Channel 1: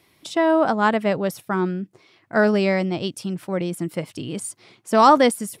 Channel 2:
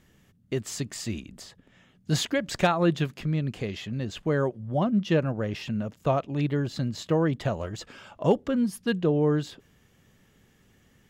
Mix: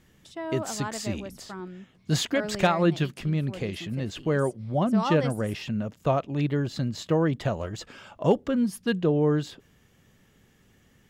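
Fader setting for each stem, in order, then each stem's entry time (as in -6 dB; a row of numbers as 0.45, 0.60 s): -16.0, +0.5 dB; 0.00, 0.00 s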